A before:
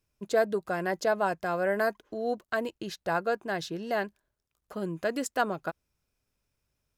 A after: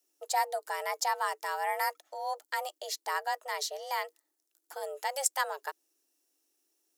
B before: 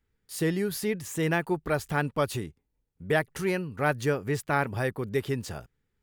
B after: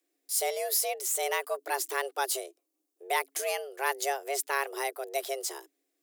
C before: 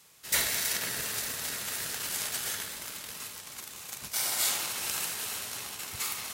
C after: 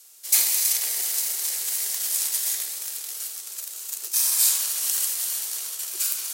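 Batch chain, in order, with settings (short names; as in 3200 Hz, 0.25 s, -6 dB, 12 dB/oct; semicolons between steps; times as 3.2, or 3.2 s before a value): frequency shift +270 Hz; tone controls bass -11 dB, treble +15 dB; gain -4.5 dB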